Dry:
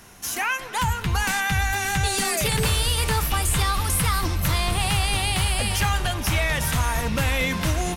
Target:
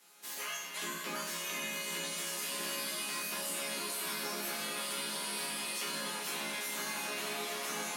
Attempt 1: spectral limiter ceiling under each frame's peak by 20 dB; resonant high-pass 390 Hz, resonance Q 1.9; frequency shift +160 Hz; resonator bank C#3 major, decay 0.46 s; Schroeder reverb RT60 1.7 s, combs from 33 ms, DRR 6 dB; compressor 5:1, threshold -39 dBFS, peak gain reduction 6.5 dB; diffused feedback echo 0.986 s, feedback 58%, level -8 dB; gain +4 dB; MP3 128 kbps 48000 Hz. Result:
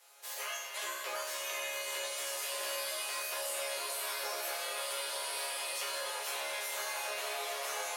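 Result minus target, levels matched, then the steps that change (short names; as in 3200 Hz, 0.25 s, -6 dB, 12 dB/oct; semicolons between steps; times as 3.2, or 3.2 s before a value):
500 Hz band +3.0 dB
remove: resonant high-pass 390 Hz, resonance Q 1.9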